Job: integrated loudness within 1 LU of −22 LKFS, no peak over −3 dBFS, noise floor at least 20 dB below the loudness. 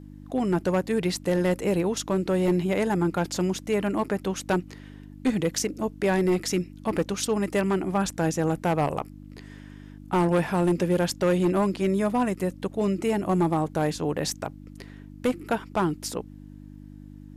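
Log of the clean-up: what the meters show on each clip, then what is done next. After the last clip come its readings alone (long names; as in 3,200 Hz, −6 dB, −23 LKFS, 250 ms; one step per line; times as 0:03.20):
share of clipped samples 1.4%; peaks flattened at −17.0 dBFS; mains hum 50 Hz; hum harmonics up to 300 Hz; level of the hum −42 dBFS; integrated loudness −26.0 LKFS; sample peak −17.0 dBFS; target loudness −22.0 LKFS
→ clipped peaks rebuilt −17 dBFS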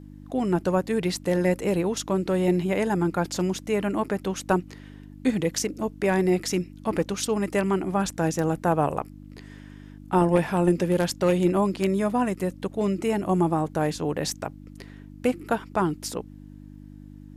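share of clipped samples 0.0%; mains hum 50 Hz; hum harmonics up to 300 Hz; level of the hum −42 dBFS
→ hum removal 50 Hz, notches 6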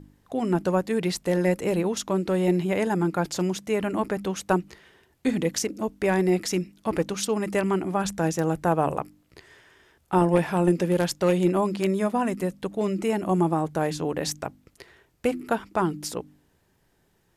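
mains hum none found; integrated loudness −25.5 LKFS; sample peak −8.5 dBFS; target loudness −22.0 LKFS
→ level +3.5 dB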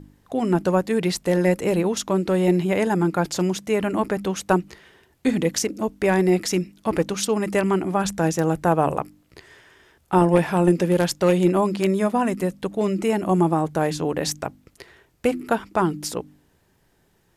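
integrated loudness −22.0 LKFS; sample peak −5.0 dBFS; background noise floor −63 dBFS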